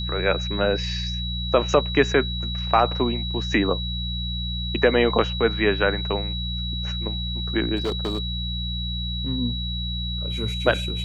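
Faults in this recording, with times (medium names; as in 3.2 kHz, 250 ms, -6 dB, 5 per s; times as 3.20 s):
hum 60 Hz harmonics 3 -29 dBFS
whine 3.9 kHz -30 dBFS
7.76–9.15 s: clipped -20.5 dBFS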